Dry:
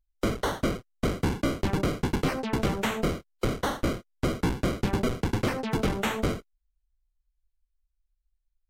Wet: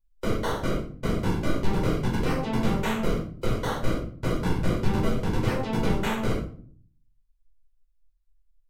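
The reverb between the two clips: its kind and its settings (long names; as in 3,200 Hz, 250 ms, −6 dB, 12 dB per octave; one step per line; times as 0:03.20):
rectangular room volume 450 cubic metres, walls furnished, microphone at 4.8 metres
level −8 dB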